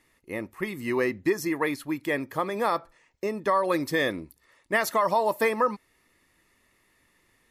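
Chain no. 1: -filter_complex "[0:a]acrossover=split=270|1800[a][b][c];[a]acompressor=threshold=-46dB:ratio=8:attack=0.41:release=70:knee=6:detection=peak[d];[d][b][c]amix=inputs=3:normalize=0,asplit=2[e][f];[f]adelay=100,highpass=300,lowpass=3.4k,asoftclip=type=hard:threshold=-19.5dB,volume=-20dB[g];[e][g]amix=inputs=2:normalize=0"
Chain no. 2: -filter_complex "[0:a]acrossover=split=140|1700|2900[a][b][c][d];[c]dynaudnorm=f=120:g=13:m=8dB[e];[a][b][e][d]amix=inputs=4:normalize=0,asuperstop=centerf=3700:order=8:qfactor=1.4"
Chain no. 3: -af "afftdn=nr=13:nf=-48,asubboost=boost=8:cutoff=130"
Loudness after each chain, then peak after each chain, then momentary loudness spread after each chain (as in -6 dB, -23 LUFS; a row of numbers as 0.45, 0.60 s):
-28.0, -25.5, -28.5 LUFS; -11.5, -9.0, -13.0 dBFS; 12, 11, 11 LU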